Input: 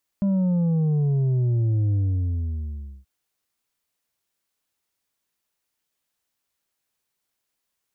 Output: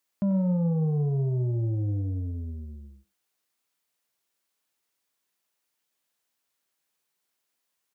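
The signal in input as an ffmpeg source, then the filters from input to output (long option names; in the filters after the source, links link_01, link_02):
-f lavfi -i "aevalsrc='0.112*clip((2.83-t)/1.11,0,1)*tanh(1.78*sin(2*PI*200*2.83/log(65/200)*(exp(log(65/200)*t/2.83)-1)))/tanh(1.78)':duration=2.83:sample_rate=44100"
-filter_complex "[0:a]highpass=frequency=190:poles=1,asplit=2[link_01][link_02];[link_02]adelay=90,highpass=300,lowpass=3400,asoftclip=type=hard:threshold=-28dB,volume=-10dB[link_03];[link_01][link_03]amix=inputs=2:normalize=0"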